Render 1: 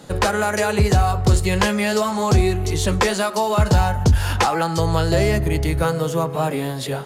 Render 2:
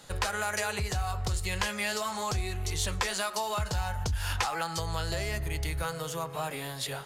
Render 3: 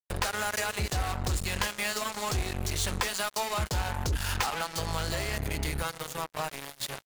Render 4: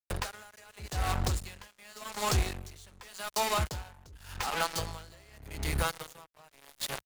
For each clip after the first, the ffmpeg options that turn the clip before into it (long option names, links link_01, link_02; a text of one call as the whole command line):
ffmpeg -i in.wav -af "acompressor=threshold=-18dB:ratio=6,equalizer=frequency=260:width=0.43:gain=-14,volume=-3.5dB" out.wav
ffmpeg -i in.wav -af "acrusher=bits=4:mix=0:aa=0.5" out.wav
ffmpeg -i in.wav -filter_complex "[0:a]acrossover=split=110[link_01][link_02];[link_02]aeval=exprs='sgn(val(0))*max(abs(val(0))-0.00501,0)':channel_layout=same[link_03];[link_01][link_03]amix=inputs=2:normalize=0,aeval=exprs='val(0)*pow(10,-27*(0.5-0.5*cos(2*PI*0.86*n/s))/20)':channel_layout=same,volume=4dB" out.wav